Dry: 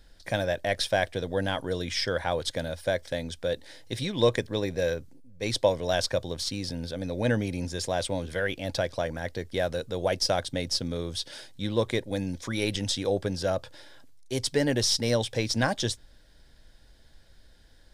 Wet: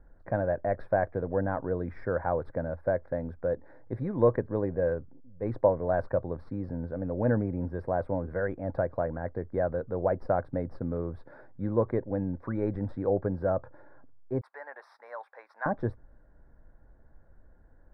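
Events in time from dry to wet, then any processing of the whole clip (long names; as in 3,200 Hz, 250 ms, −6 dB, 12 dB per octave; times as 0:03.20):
0:14.41–0:15.66: high-pass filter 900 Hz 24 dB per octave
whole clip: inverse Chebyshev low-pass filter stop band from 2,800 Hz, stop band 40 dB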